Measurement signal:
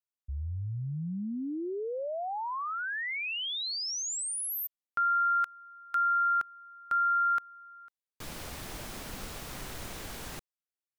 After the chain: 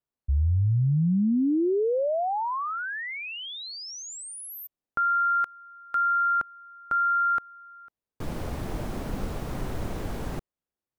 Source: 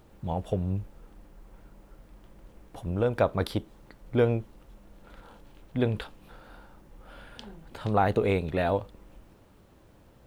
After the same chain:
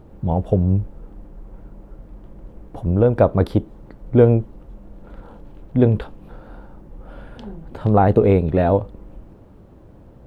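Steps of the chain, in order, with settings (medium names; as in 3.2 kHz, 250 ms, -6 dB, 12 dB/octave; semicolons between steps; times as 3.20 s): tilt shelf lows +9 dB, about 1.3 kHz; trim +3.5 dB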